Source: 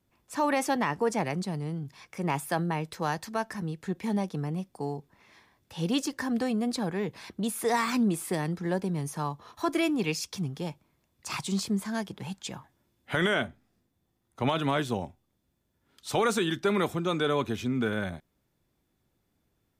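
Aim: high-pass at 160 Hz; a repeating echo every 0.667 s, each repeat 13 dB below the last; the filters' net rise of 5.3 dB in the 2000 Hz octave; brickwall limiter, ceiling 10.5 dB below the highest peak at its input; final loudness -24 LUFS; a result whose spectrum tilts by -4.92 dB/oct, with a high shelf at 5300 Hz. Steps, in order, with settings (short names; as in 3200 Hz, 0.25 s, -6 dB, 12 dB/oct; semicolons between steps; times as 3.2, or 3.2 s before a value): HPF 160 Hz; bell 2000 Hz +7.5 dB; high shelf 5300 Hz -5.5 dB; limiter -22.5 dBFS; feedback echo 0.667 s, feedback 22%, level -13 dB; gain +9 dB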